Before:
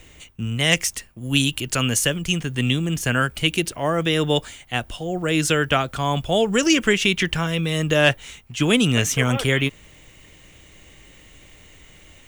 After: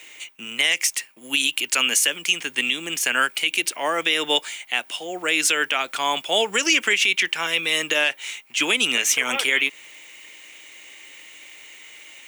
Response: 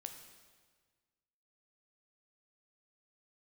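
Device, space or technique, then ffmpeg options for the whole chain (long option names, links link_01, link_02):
laptop speaker: -af "highpass=frequency=270:width=0.5412,highpass=frequency=270:width=1.3066,tiltshelf=frequency=1100:gain=-6,equalizer=frequency=890:width_type=o:width=0.25:gain=5,equalizer=frequency=2300:width_type=o:width=0.54:gain=7,alimiter=limit=-7.5dB:level=0:latency=1:release=137"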